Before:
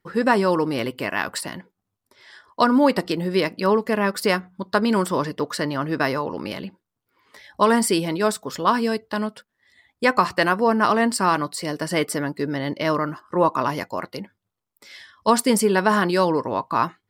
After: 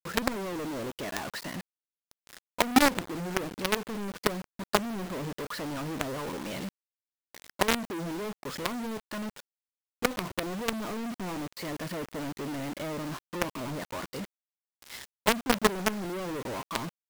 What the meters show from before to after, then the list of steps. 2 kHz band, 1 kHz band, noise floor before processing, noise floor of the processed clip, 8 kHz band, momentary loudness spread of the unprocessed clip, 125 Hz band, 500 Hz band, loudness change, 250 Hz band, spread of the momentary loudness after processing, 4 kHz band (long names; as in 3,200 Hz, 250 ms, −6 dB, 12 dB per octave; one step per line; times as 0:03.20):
−8.5 dB, −12.0 dB, −82 dBFS, below −85 dBFS, −7.0 dB, 10 LU, −9.0 dB, −12.0 dB, −10.0 dB, −10.0 dB, 12 LU, −5.0 dB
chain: treble cut that deepens with the level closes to 500 Hz, closed at −17.5 dBFS
log-companded quantiser 2 bits
level −9 dB